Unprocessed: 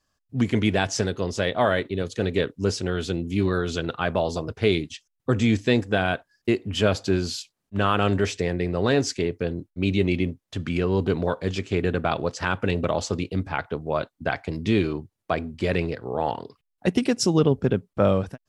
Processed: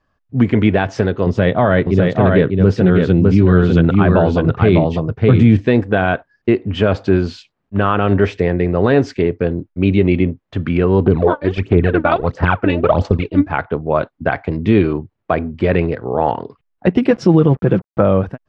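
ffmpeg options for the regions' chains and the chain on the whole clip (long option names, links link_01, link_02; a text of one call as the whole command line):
ffmpeg -i in.wav -filter_complex "[0:a]asettb=1/sr,asplit=3[link_01][link_02][link_03];[link_01]atrim=end=1.264[link_04];[link_02]atrim=start=1.26:end=5.6,asetpts=PTS-STARTPTS,afade=type=in:duration=0.004:curve=qsin,afade=type=out:start_time=4.336:duration=0.004:curve=qsin,equalizer=frequency=140:width=1:gain=9.5,aecho=1:1:603:0.668,atrim=end_sample=191394[link_05];[link_03]atrim=start=5.596[link_06];[link_04][link_05]acrossfade=duration=0.004:curve1=hsin:curve2=qsin[link_07];[link_07][link_06]acrossfade=duration=0.004:curve1=qsin:curve2=hsin,asettb=1/sr,asplit=3[link_08][link_09][link_10];[link_08]atrim=end=11.064[link_11];[link_09]atrim=start=11.06:end=13.5,asetpts=PTS-STARTPTS,afade=type=in:duration=0.004:curve=qsin,afade=type=out:start_time=2.436:duration=0.004:curve=qsin,agate=range=-6dB:threshold=-31dB:ratio=16:release=100:detection=peak,aphaser=in_gain=1:out_gain=1:delay=3.5:decay=0.73:speed=1.5:type=sinusoidal[link_12];[link_10]atrim=start=13.496[link_13];[link_11][link_12]acrossfade=duration=0.004:curve1=hsin:curve2=qsin[link_14];[link_14][link_13]acrossfade=duration=0.004:curve1=qsin:curve2=hsin,asettb=1/sr,asplit=3[link_15][link_16][link_17];[link_15]atrim=end=17.104[link_18];[link_16]atrim=start=17.1:end=18.01,asetpts=PTS-STARTPTS,afade=type=in:duration=0.004:curve=qsin,afade=type=out:start_time=0.906:duration=0.004:curve=qsin,equalizer=frequency=7600:width_type=o:width=0.83:gain=-5.5,aecho=1:1:6:0.64,atrim=end_sample=40131,acrusher=bits=6:mix=0:aa=0.5[link_19];[link_17]atrim=start=18.006[link_20];[link_18][link_19]acrossfade=duration=0.004:curve1=hsin:curve2=qsin[link_21];[link_21][link_20]acrossfade=duration=0.004:curve1=qsin:curve2=hsin,lowpass=2000,alimiter=level_in=10.5dB:limit=-1dB:release=50:level=0:latency=1,volume=-1dB" out.wav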